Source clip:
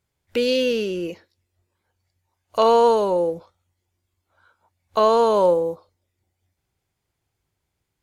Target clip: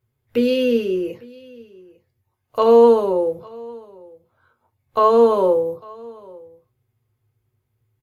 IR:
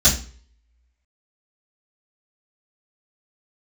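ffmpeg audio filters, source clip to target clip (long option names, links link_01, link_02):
-filter_complex "[0:a]equalizer=frequency=6800:width=0.58:gain=-11,aecho=1:1:851:0.0668,asplit=2[link_01][link_02];[1:a]atrim=start_sample=2205,asetrate=79380,aresample=44100,highshelf=frequency=7700:gain=8.5[link_03];[link_02][link_03]afir=irnorm=-1:irlink=0,volume=-19.5dB[link_04];[link_01][link_04]amix=inputs=2:normalize=0"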